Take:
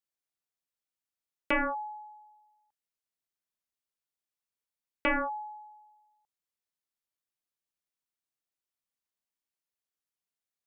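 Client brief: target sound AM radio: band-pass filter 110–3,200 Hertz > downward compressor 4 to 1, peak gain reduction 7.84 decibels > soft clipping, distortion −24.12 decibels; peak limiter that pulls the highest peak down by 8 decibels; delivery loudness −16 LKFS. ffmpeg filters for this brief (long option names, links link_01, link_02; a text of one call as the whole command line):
ffmpeg -i in.wav -af "alimiter=level_in=4.5dB:limit=-24dB:level=0:latency=1,volume=-4.5dB,highpass=110,lowpass=3200,acompressor=threshold=-39dB:ratio=4,asoftclip=threshold=-31.5dB,volume=27.5dB" out.wav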